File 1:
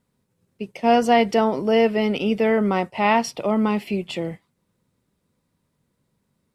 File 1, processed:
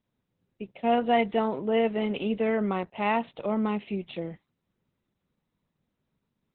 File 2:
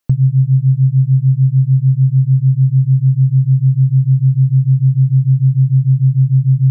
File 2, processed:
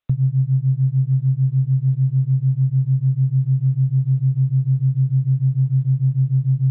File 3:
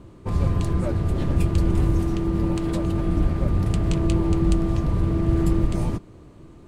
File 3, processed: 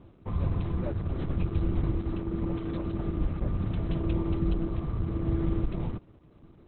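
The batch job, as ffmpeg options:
-af "volume=0.473" -ar 48000 -c:a libopus -b:a 8k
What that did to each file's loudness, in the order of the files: -7.0 LU, -6.5 LU, -8.0 LU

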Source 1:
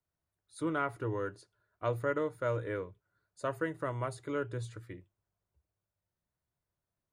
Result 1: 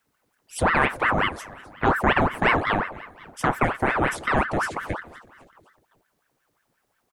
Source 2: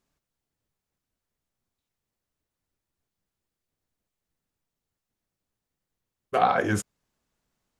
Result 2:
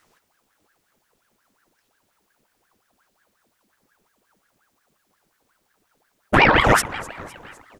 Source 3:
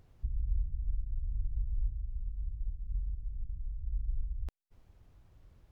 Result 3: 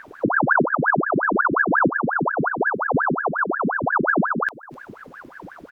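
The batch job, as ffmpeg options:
-filter_complex "[0:a]asplit=2[s0][s1];[s1]acompressor=threshold=0.00794:ratio=6,volume=1.12[s2];[s0][s2]amix=inputs=2:normalize=0,aecho=1:1:254|508|762|1016:0.112|0.0595|0.0315|0.0167,alimiter=level_in=4.47:limit=0.891:release=50:level=0:latency=1,aeval=exprs='val(0)*sin(2*PI*930*n/s+930*0.8/5.6*sin(2*PI*5.6*n/s))':c=same"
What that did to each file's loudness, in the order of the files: +13.0 LU, +8.5 LU, +19.5 LU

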